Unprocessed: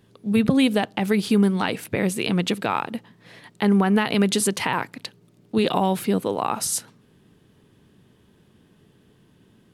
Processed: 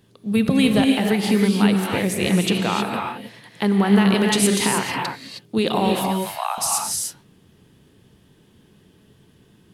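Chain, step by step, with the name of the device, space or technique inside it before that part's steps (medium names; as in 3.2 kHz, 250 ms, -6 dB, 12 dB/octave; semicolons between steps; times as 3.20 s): 6.06–6.58 s: steep high-pass 640 Hz 72 dB/octave; exciter from parts (in parallel at -7.5 dB: high-pass 2.2 kHz 12 dB/octave + saturation -19 dBFS, distortion -16 dB); on the sum: gated-style reverb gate 340 ms rising, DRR 1 dB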